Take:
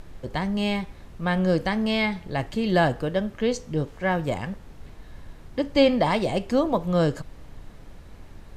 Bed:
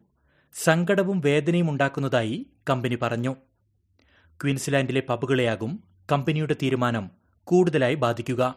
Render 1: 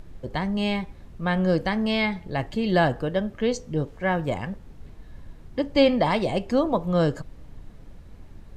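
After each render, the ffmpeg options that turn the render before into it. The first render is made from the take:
-af "afftdn=nr=6:nf=-46"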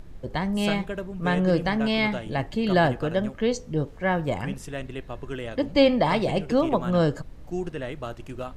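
-filter_complex "[1:a]volume=-11.5dB[a];[0:a][a]amix=inputs=2:normalize=0"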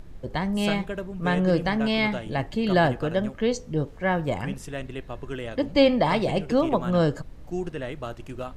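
-af anull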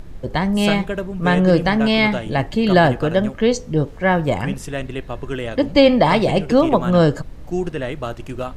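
-af "volume=7.5dB,alimiter=limit=-2dB:level=0:latency=1"

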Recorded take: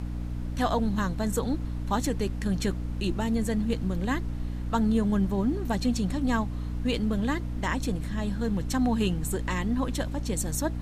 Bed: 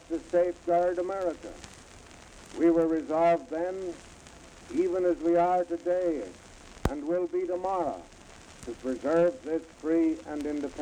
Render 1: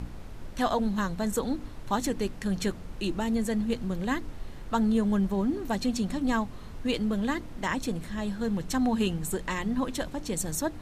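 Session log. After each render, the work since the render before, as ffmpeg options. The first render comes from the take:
-af "bandreject=f=60:t=h:w=4,bandreject=f=120:t=h:w=4,bandreject=f=180:t=h:w=4,bandreject=f=240:t=h:w=4,bandreject=f=300:t=h:w=4"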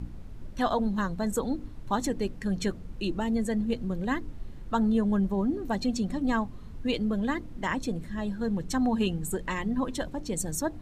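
-af "afftdn=nr=9:nf=-41"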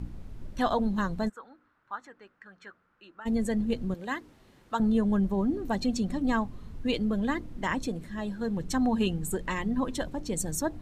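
-filter_complex "[0:a]asplit=3[a][b][c];[a]afade=t=out:st=1.28:d=0.02[d];[b]bandpass=f=1.4k:t=q:w=4,afade=t=in:st=1.28:d=0.02,afade=t=out:st=3.25:d=0.02[e];[c]afade=t=in:st=3.25:d=0.02[f];[d][e][f]amix=inputs=3:normalize=0,asettb=1/sr,asplit=3[g][h][i];[g]atrim=end=3.944[j];[h]atrim=start=3.94:end=4.8,asetpts=PTS-STARTPTS,afade=t=in:d=0.004:c=qsin,afade=t=out:st=0.856:d=0.004:c=qsin,highpass=f=610:p=1[k];[i]atrim=start=4.796[l];[j][k]acrossfade=d=0.004:c1=hsin:c2=qsin[m];[m][l]acrossfade=d=0.004:c1=qsin:c2=hsin,asettb=1/sr,asplit=3[n][o][p];[n]atrim=end=7.884[q];[o]atrim=start=7.88:end=8.57,asetpts=PTS-STARTPTS,afade=t=in:d=0.004:c=qsin,afade=t=out:st=0.686:d=0.004:c=qsin,lowshelf=f=150:g=-6.5[r];[p]atrim=start=8.566[s];[q][r]acrossfade=d=0.004:c1=hsin:c2=qsin[t];[t][s]acrossfade=d=0.004:c1=qsin:c2=hsin"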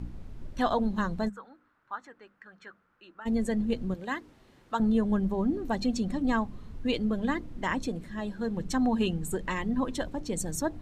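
-af "highshelf=f=9.7k:g=-6,bandreject=f=50:t=h:w=6,bandreject=f=100:t=h:w=6,bandreject=f=150:t=h:w=6,bandreject=f=200:t=h:w=6"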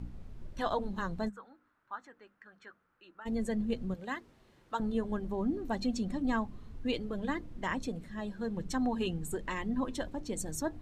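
-af "flanger=delay=1.4:depth=1.9:regen=-82:speed=0.25:shape=triangular"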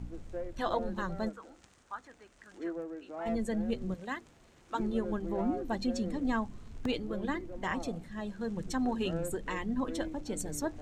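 -filter_complex "[1:a]volume=-15dB[a];[0:a][a]amix=inputs=2:normalize=0"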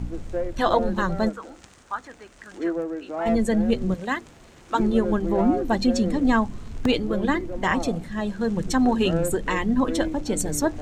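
-af "volume=11.5dB"

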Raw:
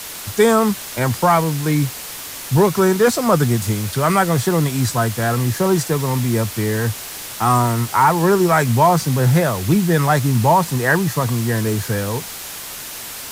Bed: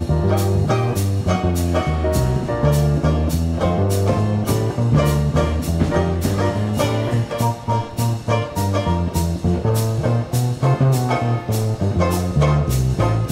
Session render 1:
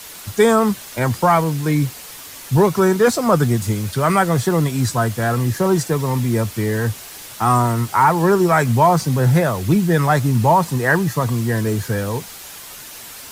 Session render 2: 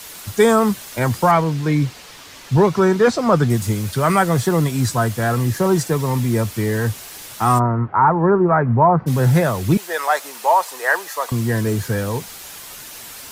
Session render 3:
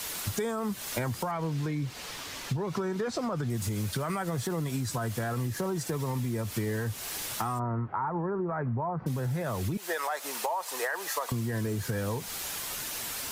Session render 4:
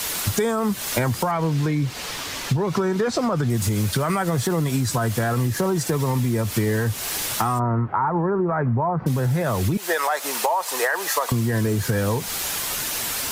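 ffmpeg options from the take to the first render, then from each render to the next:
-af "afftdn=nr=6:nf=-32"
-filter_complex "[0:a]asettb=1/sr,asplit=3[a][b][c];[a]atrim=end=1.314[d];[b]atrim=start=1.31:end=3.5,asetpts=PTS-STARTPTS,afade=t=in:d=0.004:c=qsin,afade=t=out:st=2.186:d=0.004:c=qsin,acrossover=split=6300[e][f];[f]acompressor=threshold=-50dB:ratio=4:attack=1:release=60[g];[e][g]amix=inputs=2:normalize=0[h];[c]atrim=start=3.496[i];[d][h]acrossfade=d=0.004:c1=hsin:c2=qsin[j];[j][i]acrossfade=d=0.004:c1=qsin:c2=hsin,asplit=3[k][l][m];[k]afade=t=out:st=7.58:d=0.02[n];[l]lowpass=f=1.5k:w=0.5412,lowpass=f=1.5k:w=1.3066,afade=t=in:st=7.58:d=0.02,afade=t=out:st=9.06:d=0.02[o];[m]afade=t=in:st=9.06:d=0.02[p];[n][o][p]amix=inputs=3:normalize=0,asettb=1/sr,asplit=3[q][r][s];[q]atrim=end=9.774[t];[r]atrim=start=9.77:end=11.32,asetpts=PTS-STARTPTS,afade=t=in:d=0.004:c=qsin,afade=t=out:st=1.546:d=0.004:c=qsin,highpass=f=530:w=0.5412,highpass=f=530:w=1.3066[u];[s]atrim=start=11.316[v];[t][u]acrossfade=d=0.004:c1=hsin:c2=qsin[w];[w][v]acrossfade=d=0.004:c1=qsin:c2=hsin"
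-af "alimiter=limit=-14.5dB:level=0:latency=1:release=97,acompressor=threshold=-28dB:ratio=10"
-af "volume=9.5dB"

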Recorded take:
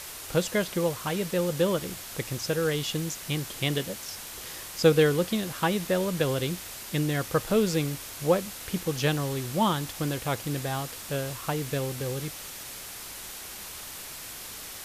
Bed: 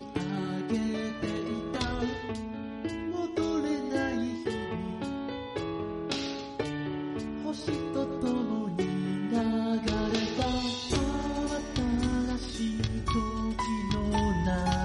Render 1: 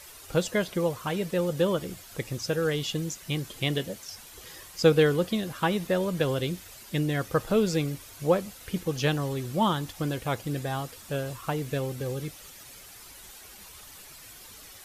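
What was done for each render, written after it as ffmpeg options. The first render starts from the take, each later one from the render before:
-af "afftdn=nr=10:nf=-41"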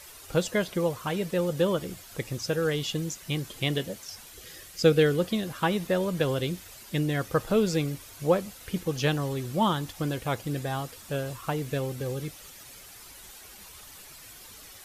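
-filter_complex "[0:a]asettb=1/sr,asplit=3[a][b][c];[a]atrim=end=4.324[d];[b]atrim=start=4.32:end=5.2,asetpts=PTS-STARTPTS,afade=t=in:d=0.004:c=qsin,afade=t=out:st=0.876:d=0.004:c=qsin,equalizer=f=960:w=3:g=-10.5[e];[c]atrim=start=5.196[f];[d][e]acrossfade=d=0.004:c1=hsin:c2=qsin[g];[g][f]acrossfade=d=0.004:c1=qsin:c2=hsin"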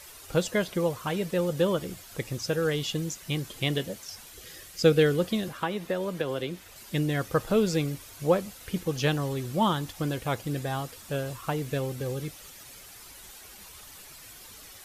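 -filter_complex "[0:a]asettb=1/sr,asplit=3[a][b][c];[a]atrim=end=5.484[d];[b]atrim=start=5.48:end=6.76,asetpts=PTS-STARTPTS,afade=t=in:d=0.004:c=qsin,afade=t=out:st=1.276:d=0.004:c=qsin,acrossover=split=220|3500[e][f][g];[e]acompressor=threshold=-44dB:ratio=4[h];[f]acompressor=threshold=-26dB:ratio=4[i];[g]acompressor=threshold=-51dB:ratio=4[j];[h][i][j]amix=inputs=3:normalize=0[k];[c]atrim=start=6.756[l];[d][k]acrossfade=d=0.004:c1=hsin:c2=qsin[m];[m][l]acrossfade=d=0.004:c1=qsin:c2=hsin"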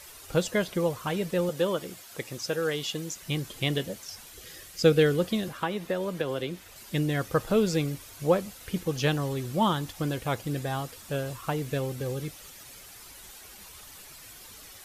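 -filter_complex "[0:a]asettb=1/sr,asplit=3[a][b][c];[a]atrim=end=1.494[d];[b]atrim=start=1.49:end=3.16,asetpts=PTS-STARTPTS,afade=t=in:d=0.004:c=qsin,afade=t=out:st=1.666:d=0.004:c=qsin,highpass=f=290:p=1[e];[c]atrim=start=3.156[f];[d][e]acrossfade=d=0.004:c1=hsin:c2=qsin[g];[g][f]acrossfade=d=0.004:c1=qsin:c2=hsin"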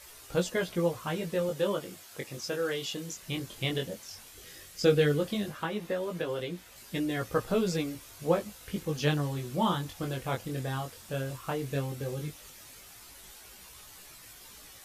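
-af "flanger=delay=16.5:depth=6.7:speed=0.14"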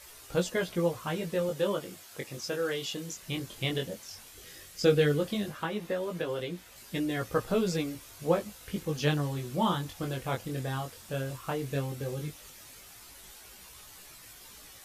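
-af anull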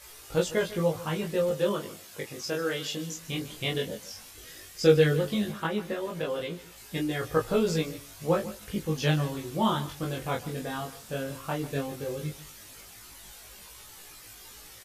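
-filter_complex "[0:a]asplit=2[a][b];[b]adelay=19,volume=-2dB[c];[a][c]amix=inputs=2:normalize=0,aecho=1:1:148:0.15"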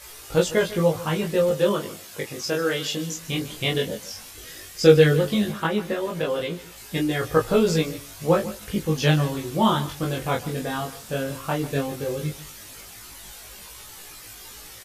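-af "volume=6dB"

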